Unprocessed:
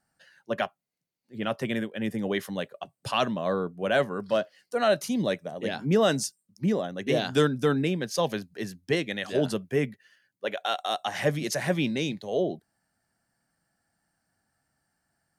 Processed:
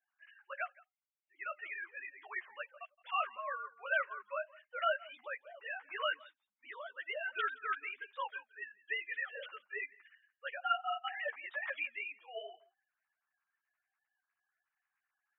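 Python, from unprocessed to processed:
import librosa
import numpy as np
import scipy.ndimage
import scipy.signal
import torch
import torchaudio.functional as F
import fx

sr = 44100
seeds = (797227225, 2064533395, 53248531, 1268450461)

y = fx.sine_speech(x, sr)
y = scipy.signal.sosfilt(scipy.signal.butter(4, 980.0, 'highpass', fs=sr, output='sos'), y)
y = fx.air_absorb(y, sr, metres=120.0)
y = y + 10.0 ** (-22.5 / 20.0) * np.pad(y, (int(169 * sr / 1000.0), 0))[:len(y)]
y = fx.ensemble(y, sr)
y = y * librosa.db_to_amplitude(3.0)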